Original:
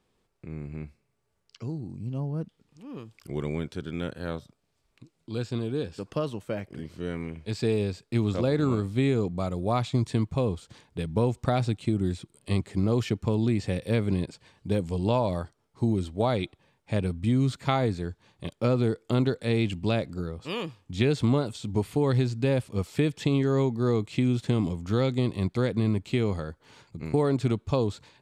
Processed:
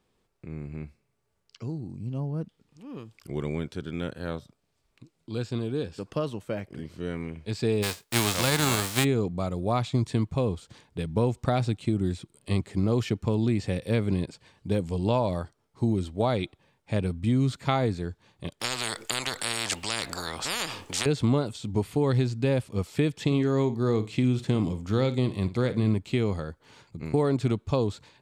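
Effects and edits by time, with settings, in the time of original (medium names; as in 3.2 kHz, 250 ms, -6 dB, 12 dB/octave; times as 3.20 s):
7.82–9.03 s: formants flattened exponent 0.3
18.60–21.06 s: spectrum-flattening compressor 10:1
23.22–25.94 s: flutter echo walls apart 9.4 m, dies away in 0.24 s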